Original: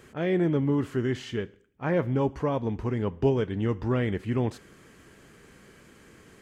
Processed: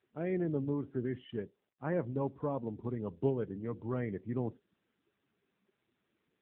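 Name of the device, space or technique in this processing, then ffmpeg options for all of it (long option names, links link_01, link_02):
mobile call with aggressive noise cancelling: -af "highpass=100,afftdn=noise_reduction=21:noise_floor=-37,volume=-7dB" -ar 8000 -c:a libopencore_amrnb -b:a 7950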